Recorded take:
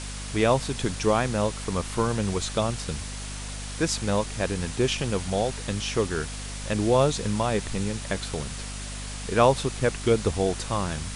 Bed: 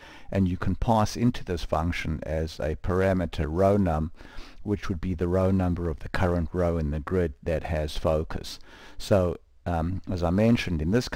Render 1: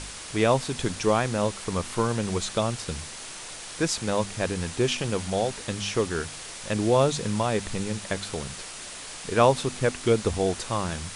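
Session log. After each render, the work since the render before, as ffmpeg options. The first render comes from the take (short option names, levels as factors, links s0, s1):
-af "bandreject=f=50:t=h:w=4,bandreject=f=100:t=h:w=4,bandreject=f=150:t=h:w=4,bandreject=f=200:t=h:w=4,bandreject=f=250:t=h:w=4"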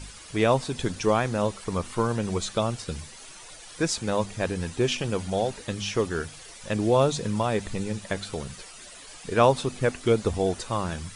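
-af "afftdn=nr=11:nf=-40"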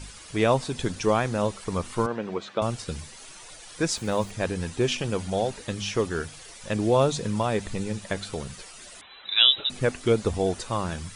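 -filter_complex "[0:a]asettb=1/sr,asplit=3[s0][s1][s2];[s0]atrim=end=2.064[s3];[s1]atrim=start=2.06:end=2.62,asetpts=PTS-STARTPTS,afade=t=in:d=0.004:c=qsin,afade=t=out:st=0.556:d=0.004:c=qsin,highpass=250,lowpass=2600[s4];[s2]atrim=start=2.616[s5];[s3][s4]acrossfade=d=0.004:c1=hsin:c2=qsin[s6];[s6][s5]acrossfade=d=0.004:c1=qsin:c2=hsin,asettb=1/sr,asplit=3[s7][s8][s9];[s7]atrim=end=3.914[s10];[s8]atrim=start=3.91:end=4.31,asetpts=PTS-STARTPTS,afade=t=in:d=0.004:c=qsin,afade=t=out:st=0.396:d=0.004:c=qsin,aeval=exprs='val(0)*gte(abs(val(0)),0.00562)':c=same[s11];[s9]atrim=start=4.306[s12];[s10][s11]acrossfade=d=0.004:c1=hsin:c2=qsin[s13];[s13][s12]acrossfade=d=0.004:c1=qsin:c2=hsin,asettb=1/sr,asplit=3[s14][s15][s16];[s14]atrim=end=9.014[s17];[s15]atrim=start=9.01:end=9.7,asetpts=PTS-STARTPTS,afade=t=in:d=0.004:c=qsin,afade=t=out:st=0.686:d=0.004:c=qsin,lowpass=f=3400:t=q:w=0.5098,lowpass=f=3400:t=q:w=0.6013,lowpass=f=3400:t=q:w=0.9,lowpass=f=3400:t=q:w=2.563,afreqshift=-4000[s18];[s16]atrim=start=9.696[s19];[s17][s18]acrossfade=d=0.004:c1=hsin:c2=qsin[s20];[s20][s19]acrossfade=d=0.004:c1=qsin:c2=hsin"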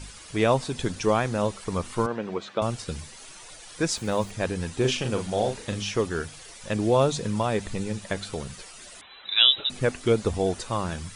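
-filter_complex "[0:a]asettb=1/sr,asplit=3[s0][s1][s2];[s0]atrim=end=4.734[s3];[s1]atrim=start=4.73:end=5.83,asetpts=PTS-STARTPTS,afade=t=in:d=0.004:c=qsin,afade=t=out:st=1.096:d=0.004:c=qsin,asplit=2[s4][s5];[s5]adelay=39,volume=0.501[s6];[s4][s6]amix=inputs=2:normalize=0,atrim=end_sample=48510[s7];[s2]atrim=start=5.826[s8];[s3][s7]acrossfade=d=0.004:c1=hsin:c2=qsin[s9];[s9][s8]acrossfade=d=0.004:c1=qsin:c2=hsin"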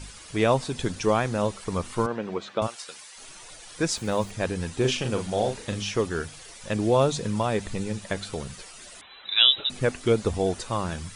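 -filter_complex "[0:a]asplit=3[s0][s1][s2];[s0]afade=t=out:st=2.66:d=0.02[s3];[s1]highpass=810,afade=t=in:st=2.66:d=0.02,afade=t=out:st=3.16:d=0.02[s4];[s2]afade=t=in:st=3.16:d=0.02[s5];[s3][s4][s5]amix=inputs=3:normalize=0"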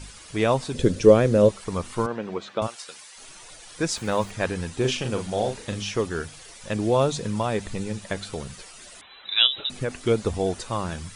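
-filter_complex "[0:a]asettb=1/sr,asplit=3[s0][s1][s2];[s0]atrim=end=0.744[s3];[s1]atrim=start=0.74:end=1.49,asetpts=PTS-STARTPTS,afade=t=in:d=0.004:c=qsin,afade=t=out:st=0.746:d=0.004:c=qsin,lowshelf=f=650:t=q:w=3:g=6.5[s4];[s2]atrim=start=1.486[s5];[s3][s4]acrossfade=d=0.004:c1=hsin:c2=qsin[s6];[s6][s5]acrossfade=d=0.004:c1=qsin:c2=hsin,asettb=1/sr,asplit=3[s7][s8][s9];[s7]atrim=end=3.964[s10];[s8]atrim=start=3.96:end=4.61,asetpts=PTS-STARTPTS,afade=t=in:d=0.004:c=qsin,afade=t=out:st=0.646:d=0.004:c=qsin,equalizer=f=1500:t=o:w=2.1:g=4.5[s11];[s9]atrim=start=4.606[s12];[s10][s11]acrossfade=d=0.004:c1=hsin:c2=qsin[s13];[s13][s12]acrossfade=d=0.004:c1=qsin:c2=hsin,asplit=3[s14][s15][s16];[s14]afade=t=out:st=9.46:d=0.02[s17];[s15]acompressor=threshold=0.0891:ratio=6:attack=3.2:release=140:knee=1:detection=peak,afade=t=in:st=9.46:d=0.02,afade=t=out:st=10.01:d=0.02[s18];[s16]afade=t=in:st=10.01:d=0.02[s19];[s17][s18][s19]amix=inputs=3:normalize=0"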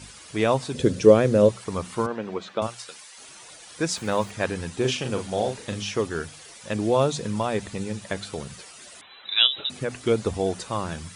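-af "highpass=77,bandreject=f=60:t=h:w=6,bandreject=f=120:t=h:w=6,bandreject=f=180:t=h:w=6"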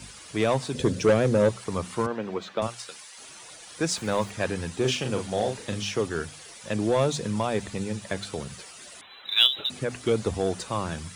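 -filter_complex "[0:a]acrossover=split=140|3000[s0][s1][s2];[s1]asoftclip=type=tanh:threshold=0.168[s3];[s2]acrusher=bits=6:mode=log:mix=0:aa=0.000001[s4];[s0][s3][s4]amix=inputs=3:normalize=0"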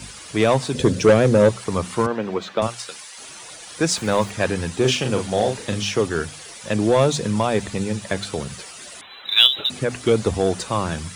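-af "volume=2.11,alimiter=limit=0.891:level=0:latency=1"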